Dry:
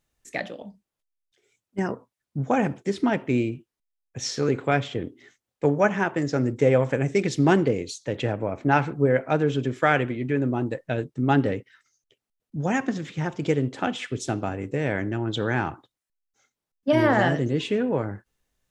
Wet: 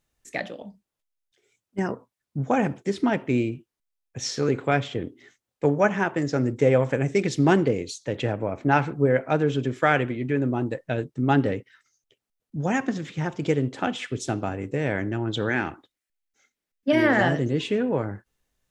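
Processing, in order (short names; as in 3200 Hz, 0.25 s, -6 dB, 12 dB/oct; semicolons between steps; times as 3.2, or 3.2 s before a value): 15.49–17.21 graphic EQ 125/250/1000/2000 Hz -8/+3/-6/+6 dB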